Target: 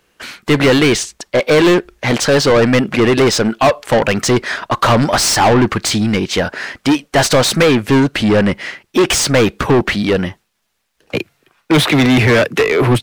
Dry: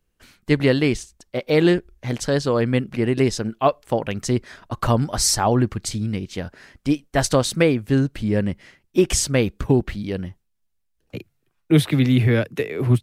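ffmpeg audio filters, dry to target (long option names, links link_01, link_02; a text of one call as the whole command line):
ffmpeg -i in.wav -filter_complex "[0:a]asplit=2[link_01][link_02];[link_02]highpass=frequency=720:poles=1,volume=30dB,asoftclip=type=tanh:threshold=-3dB[link_03];[link_01][link_03]amix=inputs=2:normalize=0,lowpass=frequency=3700:poles=1,volume=-6dB" out.wav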